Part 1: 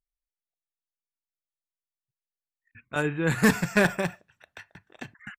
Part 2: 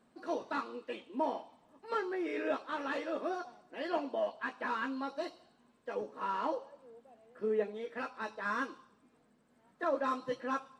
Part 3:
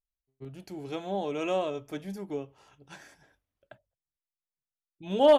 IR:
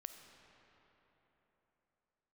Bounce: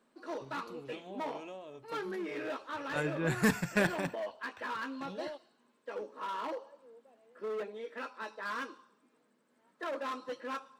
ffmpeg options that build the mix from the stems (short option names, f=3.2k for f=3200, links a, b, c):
-filter_complex "[0:a]dynaudnorm=f=190:g=13:m=7dB,volume=-14dB[a];[1:a]equalizer=f=730:w=7.8:g=-8.5,asoftclip=type=hard:threshold=-33dB,highpass=260,volume=-0.5dB[b];[2:a]acompressor=threshold=-34dB:ratio=6,volume=-9.5dB[c];[a][b][c]amix=inputs=3:normalize=0"